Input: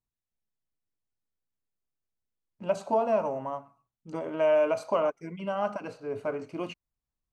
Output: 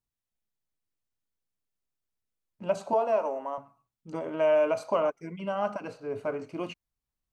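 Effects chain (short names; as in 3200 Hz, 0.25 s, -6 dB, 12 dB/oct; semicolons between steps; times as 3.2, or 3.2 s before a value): 2.93–3.58 HPF 290 Hz 24 dB/oct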